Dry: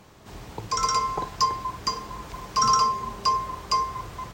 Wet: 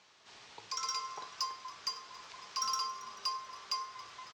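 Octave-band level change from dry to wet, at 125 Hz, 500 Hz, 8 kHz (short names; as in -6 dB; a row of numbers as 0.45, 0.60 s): under -30 dB, -20.0 dB, -10.5 dB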